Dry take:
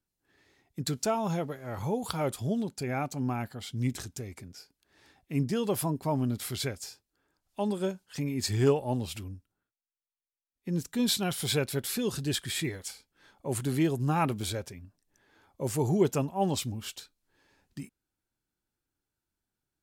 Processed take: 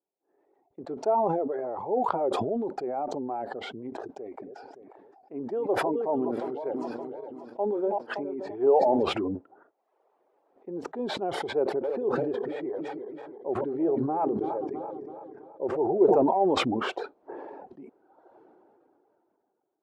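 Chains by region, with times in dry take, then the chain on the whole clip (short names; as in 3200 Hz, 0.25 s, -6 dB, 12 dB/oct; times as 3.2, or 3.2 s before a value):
4.08–9.03 regenerating reverse delay 0.285 s, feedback 56%, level -10 dB + low shelf 190 Hz -5.5 dB
11.57–16.23 regenerating reverse delay 0.165 s, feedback 72%, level -11 dB + high shelf 3600 Hz -9.5 dB
whole clip: reverb removal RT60 0.58 s; Chebyshev band-pass 370–800 Hz, order 2; sustainer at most 20 dB/s; gain +4.5 dB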